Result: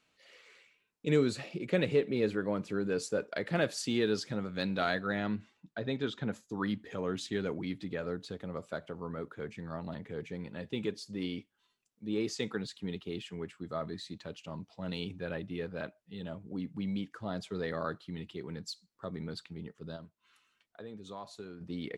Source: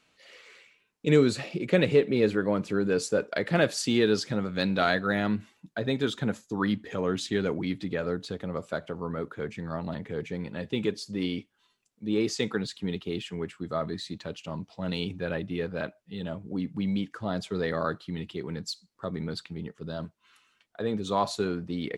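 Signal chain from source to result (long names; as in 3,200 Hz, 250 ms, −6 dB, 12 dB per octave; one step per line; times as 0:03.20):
0:05.03–0:06.31: low-pass filter 7,500 Hz → 4,700 Hz 12 dB per octave
0:19.96–0:21.61: downward compressor 2 to 1, threshold −44 dBFS, peak gain reduction 13 dB
level −6.5 dB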